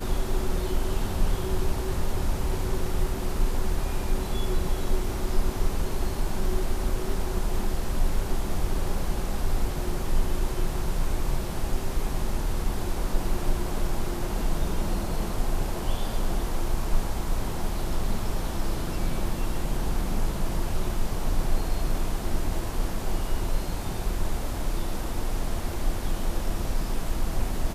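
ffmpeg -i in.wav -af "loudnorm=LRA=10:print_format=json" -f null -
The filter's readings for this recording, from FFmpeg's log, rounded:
"input_i" : "-31.4",
"input_tp" : "-10.6",
"input_lra" : "1.9",
"input_thresh" : "-41.4",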